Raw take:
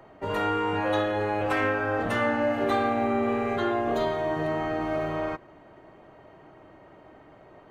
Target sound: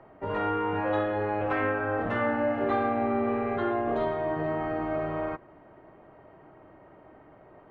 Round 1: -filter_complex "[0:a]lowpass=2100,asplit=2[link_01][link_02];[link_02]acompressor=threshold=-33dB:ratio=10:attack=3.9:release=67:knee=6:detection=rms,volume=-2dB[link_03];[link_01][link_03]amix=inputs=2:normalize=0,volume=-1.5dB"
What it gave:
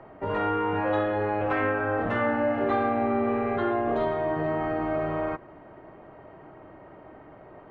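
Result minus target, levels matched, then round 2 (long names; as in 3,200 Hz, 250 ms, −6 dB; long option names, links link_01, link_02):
downward compressor: peak gain reduction +13.5 dB
-af "lowpass=2100,volume=-1.5dB"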